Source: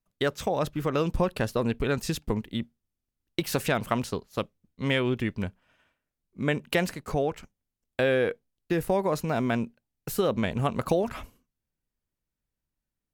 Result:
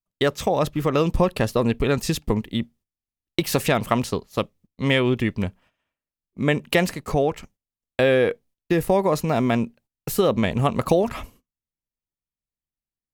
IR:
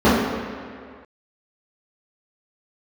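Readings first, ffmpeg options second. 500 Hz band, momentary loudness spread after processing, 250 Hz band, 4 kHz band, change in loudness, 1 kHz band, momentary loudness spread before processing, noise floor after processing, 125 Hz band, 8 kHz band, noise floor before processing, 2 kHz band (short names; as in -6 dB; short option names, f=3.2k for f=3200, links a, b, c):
+6.0 dB, 9 LU, +6.0 dB, +6.0 dB, +6.0 dB, +6.0 dB, 10 LU, under -85 dBFS, +6.0 dB, +6.0 dB, under -85 dBFS, +4.5 dB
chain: -af "agate=range=-16dB:threshold=-56dB:ratio=16:detection=peak,bandreject=f=1.5k:w=9.1,volume=6dB"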